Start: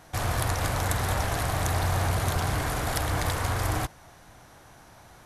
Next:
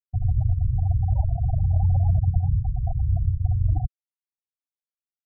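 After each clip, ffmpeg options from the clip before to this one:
-af "afftfilt=real='re*gte(hypot(re,im),0.178)':imag='im*gte(hypot(re,im),0.178)':win_size=1024:overlap=0.75,lowshelf=f=140:g=11.5"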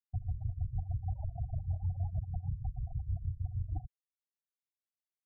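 -af "alimiter=limit=0.141:level=0:latency=1:release=35,tremolo=f=6.4:d=0.82,volume=0.355"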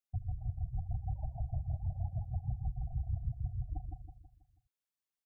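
-af "aecho=1:1:162|324|486|648|810:0.596|0.256|0.11|0.0474|0.0204,volume=0.891"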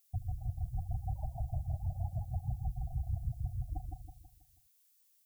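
-af "crystalizer=i=10:c=0"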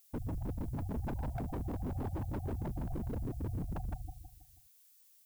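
-af "aeval=exprs='0.0141*(abs(mod(val(0)/0.0141+3,4)-2)-1)':c=same,volume=1.88"

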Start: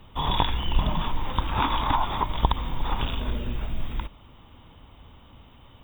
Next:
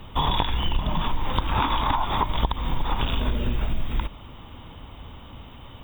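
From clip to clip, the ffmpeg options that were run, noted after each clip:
-af "acompressor=threshold=0.0447:ratio=6,volume=2.51"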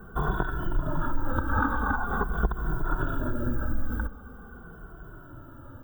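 -filter_complex "[0:a]firequalizer=gain_entry='entry(140,0);entry(320,5);entry(1000,-7);entry(1500,14);entry(2100,-29);entry(9500,6)':delay=0.05:min_phase=1,asplit=2[s0][s1];[s1]adelay=2.2,afreqshift=-0.44[s2];[s0][s2]amix=inputs=2:normalize=1"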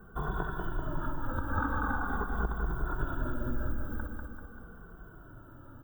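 -af "aecho=1:1:194|388|582|776|970|1164|1358:0.596|0.322|0.174|0.0938|0.0506|0.0274|0.0148,volume=0.447"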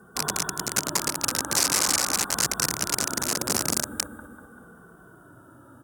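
-af "aeval=exprs='(mod(18.8*val(0)+1,2)-1)/18.8':c=same,highpass=150,lowpass=7600,aexciter=amount=9.2:drive=3.7:freq=4800,volume=1.5"

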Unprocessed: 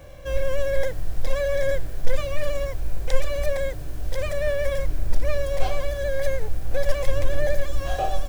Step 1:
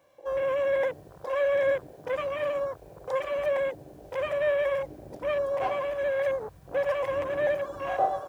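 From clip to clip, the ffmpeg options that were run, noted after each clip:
-af "highpass=230,equalizer=f=990:w=3.7:g=8,afwtdn=0.0178"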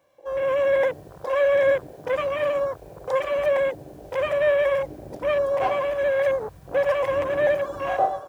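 -af "dynaudnorm=f=110:g=7:m=2.24,volume=0.841"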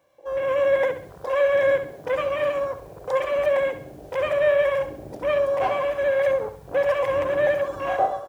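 -af "aecho=1:1:67|134|201|268:0.282|0.116|0.0474|0.0194"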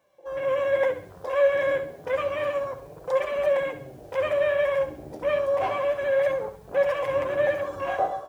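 -af "flanger=delay=4.5:depth=9.3:regen=44:speed=0.3:shape=triangular,volume=1.19"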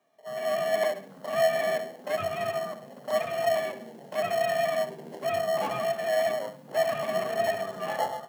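-filter_complex "[0:a]asplit=2[s0][s1];[s1]acrusher=samples=37:mix=1:aa=0.000001,volume=0.501[s2];[s0][s2]amix=inputs=2:normalize=0,afreqshift=92,volume=0.596"

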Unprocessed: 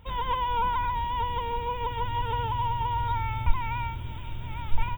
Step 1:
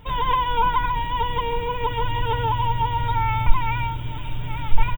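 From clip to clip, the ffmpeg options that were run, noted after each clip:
-filter_complex "[0:a]aecho=1:1:6.8:0.59,asplit=2[s0][s1];[s1]acontrast=51,volume=1.19[s2];[s0][s2]amix=inputs=2:normalize=0,volume=0.596"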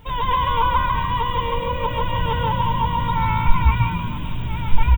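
-filter_complex "[0:a]acrusher=bits=10:mix=0:aa=0.000001,asplit=6[s0][s1][s2][s3][s4][s5];[s1]adelay=139,afreqshift=54,volume=0.596[s6];[s2]adelay=278,afreqshift=108,volume=0.245[s7];[s3]adelay=417,afreqshift=162,volume=0.1[s8];[s4]adelay=556,afreqshift=216,volume=0.0412[s9];[s5]adelay=695,afreqshift=270,volume=0.0168[s10];[s0][s6][s7][s8][s9][s10]amix=inputs=6:normalize=0"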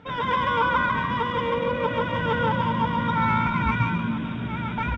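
-filter_complex "[0:a]asplit=2[s0][s1];[s1]adynamicsmooth=sensitivity=4.5:basefreq=4600,volume=1[s2];[s0][s2]amix=inputs=2:normalize=0,highpass=170,equalizer=f=230:t=q:w=4:g=8,equalizer=f=990:t=q:w=4:g=-8,equalizer=f=1400:t=q:w=4:g=7,equalizer=f=2900:t=q:w=4:g=-8,lowpass=f=6000:w=0.5412,lowpass=f=6000:w=1.3066,volume=0.631"

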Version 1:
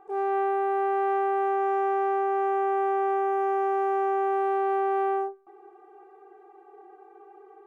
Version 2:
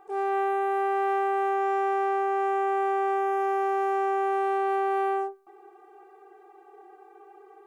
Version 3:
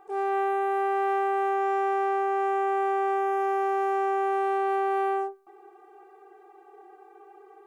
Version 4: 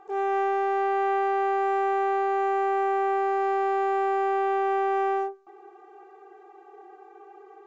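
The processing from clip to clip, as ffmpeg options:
-af "highshelf=f=2200:g=11,volume=0.841"
-af anull
-filter_complex "[0:a]asplit=2[s0][s1];[s1]asoftclip=type=tanh:threshold=0.0299,volume=0.335[s2];[s0][s2]amix=inputs=2:normalize=0,aresample=16000,aresample=44100"

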